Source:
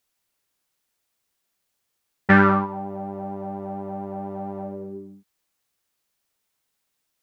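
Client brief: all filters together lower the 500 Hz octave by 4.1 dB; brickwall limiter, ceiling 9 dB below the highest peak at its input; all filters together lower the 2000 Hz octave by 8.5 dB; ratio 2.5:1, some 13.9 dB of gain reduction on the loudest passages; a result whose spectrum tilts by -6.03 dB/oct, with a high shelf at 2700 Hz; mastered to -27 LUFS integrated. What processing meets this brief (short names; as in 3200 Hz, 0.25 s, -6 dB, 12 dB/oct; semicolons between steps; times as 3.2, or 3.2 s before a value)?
bell 500 Hz -5 dB; bell 2000 Hz -8 dB; high shelf 2700 Hz -8.5 dB; compressor 2.5:1, threshold -35 dBFS; gain +12 dB; limiter -17 dBFS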